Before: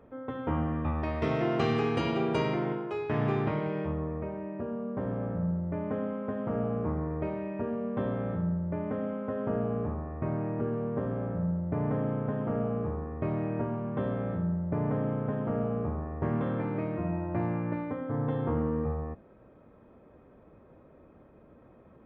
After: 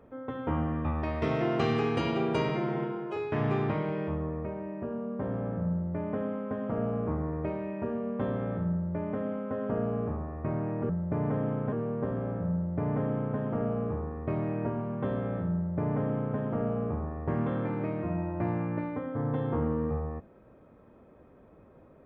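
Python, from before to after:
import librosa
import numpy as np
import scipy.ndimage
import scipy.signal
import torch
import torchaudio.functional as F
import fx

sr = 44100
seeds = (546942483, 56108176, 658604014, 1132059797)

y = fx.edit(x, sr, fx.stretch_span(start_s=2.49, length_s=0.45, factor=1.5),
    fx.duplicate(start_s=14.5, length_s=0.83, to_s=10.67), tone=tone)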